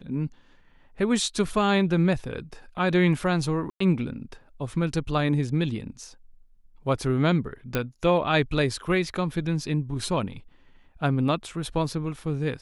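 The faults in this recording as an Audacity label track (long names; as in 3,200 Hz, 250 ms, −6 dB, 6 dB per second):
3.700000	3.800000	drop-out 104 ms
7.750000	7.750000	click −11 dBFS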